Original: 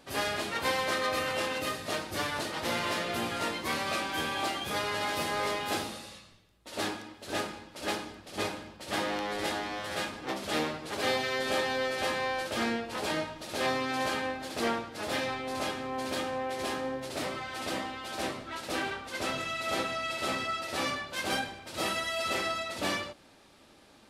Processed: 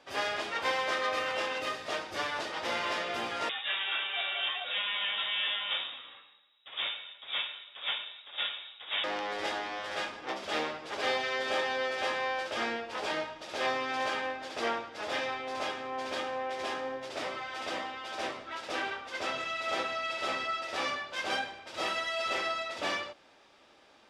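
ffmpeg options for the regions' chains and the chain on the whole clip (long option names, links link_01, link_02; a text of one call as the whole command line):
ffmpeg -i in.wav -filter_complex "[0:a]asettb=1/sr,asplit=3[link_01][link_02][link_03];[link_01]atrim=end=3.494[link_04];[link_02]atrim=start=3.49:end=9.04,asetpts=PTS-STARTPTS,afade=type=in:duration=0.004:curve=qsin,afade=type=out:start_time=5.546:duration=0.004:curve=qsin,highpass=42,lowpass=frequency=3300:width_type=q:width=0.5098,lowpass=frequency=3300:width_type=q:width=0.6013,lowpass=frequency=3300:width_type=q:width=0.9,lowpass=frequency=3300:width_type=q:width=2.563,afreqshift=-3900[link_05];[link_03]atrim=start=9.036[link_06];[link_04][link_05]acrossfade=duration=0.004:curve1=hsin:curve2=qsin[link_07];[link_07][link_06]acrossfade=duration=0.004:curve1=qsin:curve2=hsin,acrossover=split=380 6400:gain=0.251 1 0.112[link_08][link_09][link_10];[link_08][link_09][link_10]amix=inputs=3:normalize=0,bandreject=frequency=4200:width=12" out.wav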